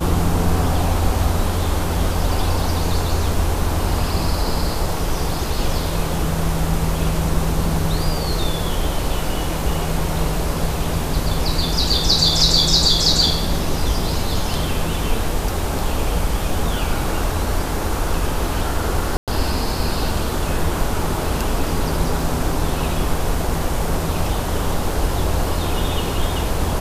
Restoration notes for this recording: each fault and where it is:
0:19.17–0:19.28: drop-out 107 ms

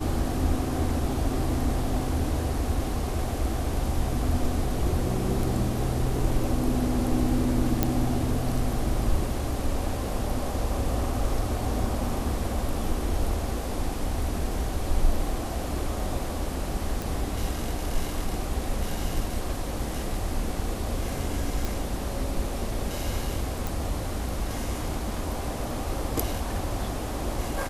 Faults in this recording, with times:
0:07.83: click −7 dBFS
0:17.02: click
0:21.65: click
0:23.67: click

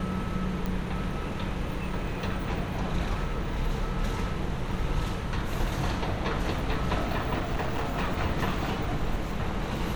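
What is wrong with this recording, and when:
0:00.66: click
0:07.38–0:08.03: clipping −24.5 dBFS

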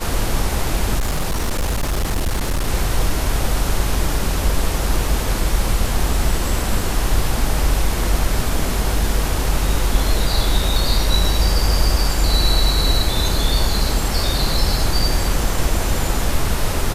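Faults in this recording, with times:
0:00.98–0:02.68: clipping −15.5 dBFS

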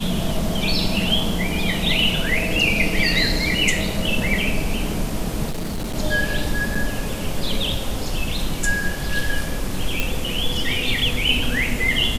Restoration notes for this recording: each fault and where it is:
0:05.49–0:05.96: clipping −22.5 dBFS
0:06.75: drop-out 4.8 ms
0:10.00: click

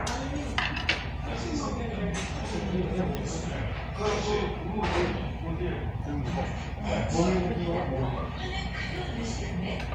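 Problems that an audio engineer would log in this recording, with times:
0:03.15: click −17 dBFS

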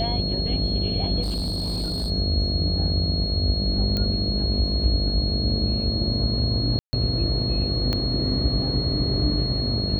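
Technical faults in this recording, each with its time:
mains buzz 50 Hz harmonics 14 −28 dBFS
whistle 4,300 Hz −27 dBFS
0:01.22–0:02.11: clipping −23 dBFS
0:03.97: click −13 dBFS
0:06.79–0:06.93: drop-out 140 ms
0:07.93: click −12 dBFS

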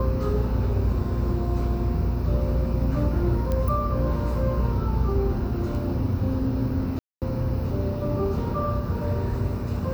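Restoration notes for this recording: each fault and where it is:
0:03.52: click −15 dBFS
0:06.99–0:07.22: drop-out 228 ms

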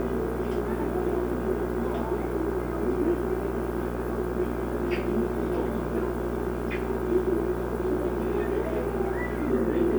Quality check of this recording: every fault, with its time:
mains buzz 60 Hz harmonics 27 −33 dBFS

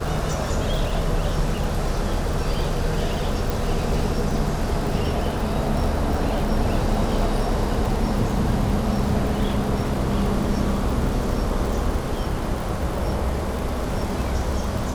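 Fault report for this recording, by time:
surface crackle 66 per second −27 dBFS
0:03.50: click

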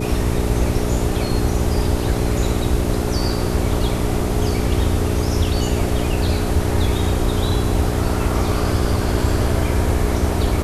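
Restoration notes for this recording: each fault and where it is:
mains hum 60 Hz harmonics 7 −23 dBFS

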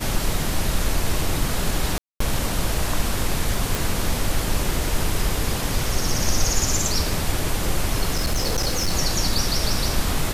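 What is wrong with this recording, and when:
0:01.98–0:02.20: drop-out 224 ms
0:03.75: click
0:08.12–0:08.94: clipping −17 dBFS

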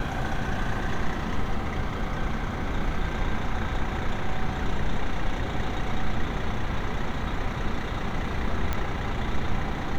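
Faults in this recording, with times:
0:08.73: click −13 dBFS

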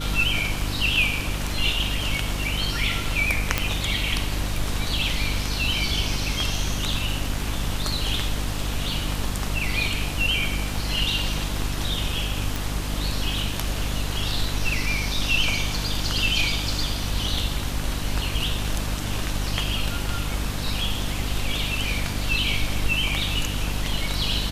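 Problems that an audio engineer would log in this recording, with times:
mains hum 50 Hz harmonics 6 −29 dBFS
0:03.58: click −4 dBFS
0:12.56: click

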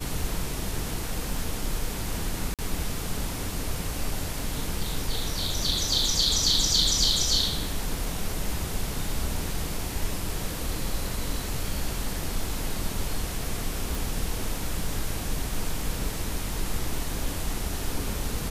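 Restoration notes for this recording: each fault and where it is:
0:02.54–0:02.59: drop-out 47 ms
0:13.95: click

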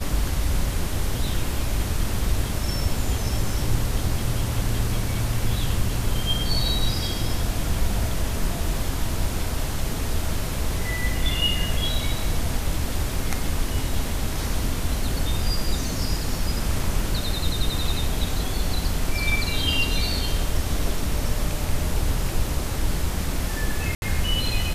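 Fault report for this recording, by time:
0:23.95–0:24.02: drop-out 71 ms

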